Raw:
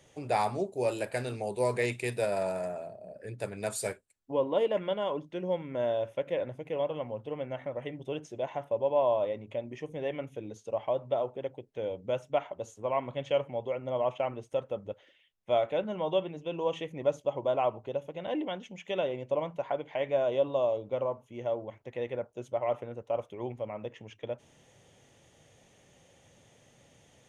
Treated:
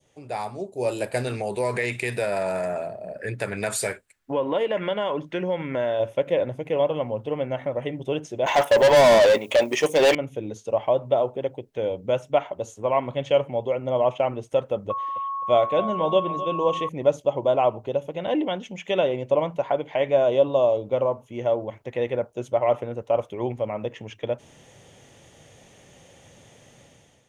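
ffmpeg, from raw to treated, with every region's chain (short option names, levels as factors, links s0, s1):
-filter_complex "[0:a]asettb=1/sr,asplit=3[s0][s1][s2];[s0]atrim=end=1.274[s3];[s1]atrim=start=1.27:end=6,asetpts=PTS-STARTPTS,afade=t=in:d=0.004:c=qsin,afade=t=out:st=4.726:d=0.004:c=qsin,equalizer=f=1800:t=o:w=1.3:g=10,acompressor=threshold=0.0251:ratio=2.5:attack=3.2:release=140:knee=1:detection=peak[s4];[s2]atrim=start=5.996[s5];[s3][s4]acrossfade=d=0.004:c1=hsin:c2=qsin[s6];[s6][s5]acrossfade=d=0.004:c1=qsin:c2=hsin,asettb=1/sr,asplit=3[s7][s8][s9];[s7]atrim=end=8.464[s10];[s8]atrim=start=8.46:end=10.15,asetpts=PTS-STARTPTS,afade=t=in:d=0.004:c=qsin,afade=t=out:st=1.686:d=0.004:c=qsin,agate=range=0.447:threshold=0.00891:ratio=16:release=100:detection=peak,aemphasis=mode=production:type=bsi,asplit=2[s11][s12];[s12]highpass=f=720:p=1,volume=28.2,asoftclip=type=tanh:threshold=0.141[s13];[s11][s13]amix=inputs=2:normalize=0,lowpass=f=7500:p=1,volume=0.501[s14];[s9]atrim=start=10.146[s15];[s10][s14]acrossfade=d=0.004:c1=hsin:c2=qsin[s16];[s16][s15]acrossfade=d=0.004:c1=qsin:c2=hsin,asettb=1/sr,asplit=3[s17][s18][s19];[s17]atrim=end=14.904[s20];[s18]atrim=start=14.9:end=16.89,asetpts=PTS-STARTPTS,afade=t=in:d=0.004:c=qsin,afade=t=out:st=1.986:d=0.004:c=qsin,aeval=exprs='val(0)+0.02*sin(2*PI*1100*n/s)':c=same,aecho=1:1:259|518|777:0.178|0.0587|0.0194,atrim=end_sample=87759[s21];[s19]atrim=start=16.886[s22];[s20][s21]acrossfade=d=0.004:c1=hsin:c2=qsin[s23];[s23][s22]acrossfade=d=0.004:c1=qsin:c2=hsin,adynamicequalizer=threshold=0.00447:dfrequency=1700:dqfactor=0.96:tfrequency=1700:tqfactor=0.96:attack=5:release=100:ratio=0.375:range=2:mode=cutabove:tftype=bell,dynaudnorm=f=570:g=3:m=4.73,volume=0.631"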